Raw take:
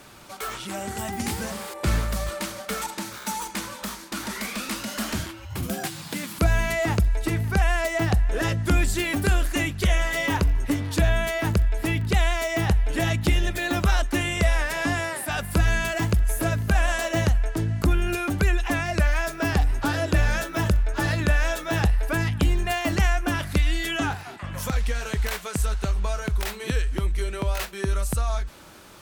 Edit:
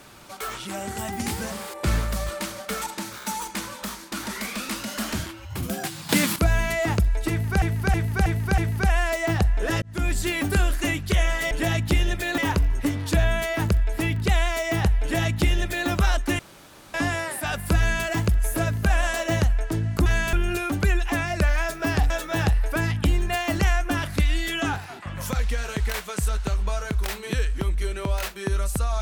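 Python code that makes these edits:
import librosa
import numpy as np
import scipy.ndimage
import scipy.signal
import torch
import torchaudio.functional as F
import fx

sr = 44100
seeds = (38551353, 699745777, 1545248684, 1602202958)

y = fx.edit(x, sr, fx.clip_gain(start_s=6.09, length_s=0.27, db=11.0),
    fx.repeat(start_s=7.3, length_s=0.32, count=5),
    fx.fade_in_span(start_s=8.54, length_s=0.53, curve='qsin'),
    fx.duplicate(start_s=12.87, length_s=0.87, to_s=10.23),
    fx.room_tone_fill(start_s=14.24, length_s=0.55),
    fx.duplicate(start_s=15.63, length_s=0.27, to_s=17.91),
    fx.cut(start_s=19.68, length_s=1.79), tone=tone)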